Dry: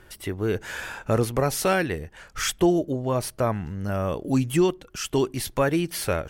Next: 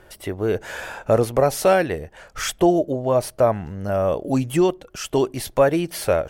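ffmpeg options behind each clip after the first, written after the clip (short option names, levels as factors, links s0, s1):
-af "equalizer=f=620:t=o:w=0.99:g=9.5"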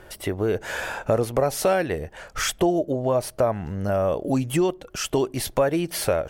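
-af "acompressor=threshold=0.0501:ratio=2,volume=1.41"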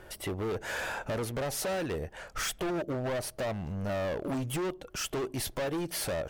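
-af "volume=20,asoftclip=hard,volume=0.0501,volume=0.631"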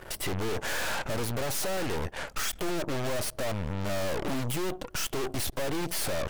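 -af "aeval=exprs='0.0335*(cos(1*acos(clip(val(0)/0.0335,-1,1)))-cos(1*PI/2))+0.0119*(cos(4*acos(clip(val(0)/0.0335,-1,1)))-cos(4*PI/2))+0.0133*(cos(5*acos(clip(val(0)/0.0335,-1,1)))-cos(5*PI/2))+0.00841*(cos(7*acos(clip(val(0)/0.0335,-1,1)))-cos(7*PI/2))+0.00422*(cos(8*acos(clip(val(0)/0.0335,-1,1)))-cos(8*PI/2))':c=same,volume=1.26"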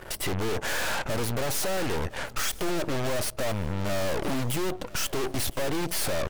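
-af "aecho=1:1:1010|2020|3030:0.1|0.032|0.0102,volume=1.33"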